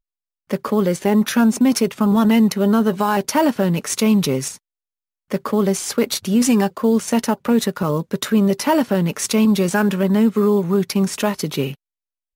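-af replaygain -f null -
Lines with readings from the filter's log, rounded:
track_gain = -1.3 dB
track_peak = 0.363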